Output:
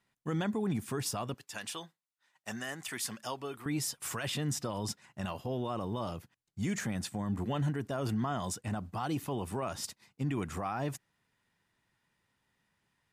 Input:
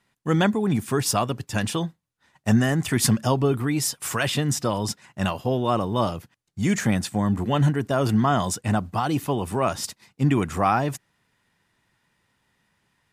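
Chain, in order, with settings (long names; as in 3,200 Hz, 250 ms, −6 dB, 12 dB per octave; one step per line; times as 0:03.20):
0:01.34–0:03.66: high-pass filter 1,200 Hz 6 dB per octave
brickwall limiter −16.5 dBFS, peak gain reduction 8.5 dB
level −8.5 dB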